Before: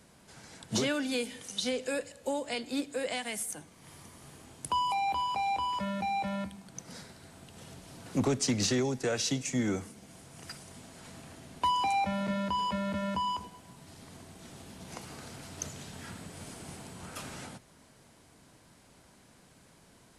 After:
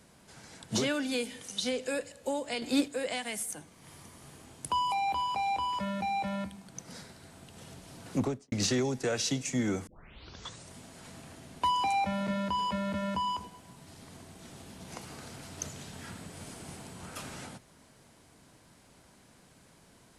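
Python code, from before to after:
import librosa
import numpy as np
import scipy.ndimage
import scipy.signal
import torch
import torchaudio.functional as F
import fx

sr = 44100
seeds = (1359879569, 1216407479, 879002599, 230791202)

y = fx.studio_fade_out(x, sr, start_s=8.13, length_s=0.39)
y = fx.edit(y, sr, fx.clip_gain(start_s=2.62, length_s=0.26, db=6.0),
    fx.tape_start(start_s=9.87, length_s=0.85), tone=tone)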